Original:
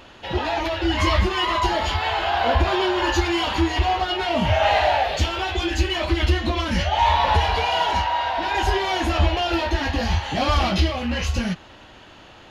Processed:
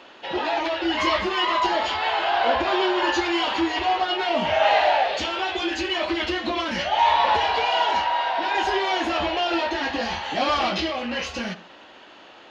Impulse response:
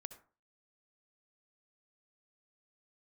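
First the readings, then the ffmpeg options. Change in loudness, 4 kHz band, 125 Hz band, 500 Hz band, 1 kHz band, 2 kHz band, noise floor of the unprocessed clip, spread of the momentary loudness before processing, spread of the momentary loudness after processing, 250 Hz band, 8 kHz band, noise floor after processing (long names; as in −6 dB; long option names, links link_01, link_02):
−1.0 dB, −0.5 dB, −19.5 dB, 0.0 dB, 0.0 dB, 0.0 dB, −46 dBFS, 5 LU, 7 LU, −2.5 dB, −4.5 dB, −47 dBFS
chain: -filter_complex "[0:a]acrossover=split=230 7400:gain=0.0708 1 0.224[link_01][link_02][link_03];[link_01][link_02][link_03]amix=inputs=3:normalize=0,asplit=2[link_04][link_05];[1:a]atrim=start_sample=2205,lowpass=8000[link_06];[link_05][link_06]afir=irnorm=-1:irlink=0,volume=2dB[link_07];[link_04][link_07]amix=inputs=2:normalize=0,volume=-4.5dB"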